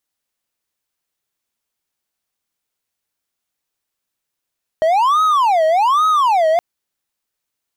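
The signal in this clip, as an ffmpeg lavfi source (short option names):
-f lavfi -i "aevalsrc='0.355*(1-4*abs(mod((950*t-320/(2*PI*1.2)*sin(2*PI*1.2*t))+0.25,1)-0.5))':d=1.77:s=44100"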